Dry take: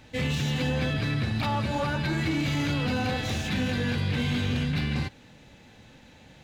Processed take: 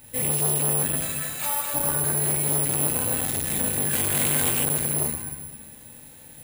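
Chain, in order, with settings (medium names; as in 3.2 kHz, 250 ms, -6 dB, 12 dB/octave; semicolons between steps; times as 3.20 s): 0.95–1.74 s: Bessel high-pass 720 Hz, order 2; 3.93–4.63 s: overdrive pedal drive 21 dB, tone 3.3 kHz, clips at -16.5 dBFS; plate-style reverb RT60 1.5 s, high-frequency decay 0.6×, DRR -2 dB; careless resampling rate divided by 4×, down none, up zero stuff; transformer saturation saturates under 3.8 kHz; trim -4 dB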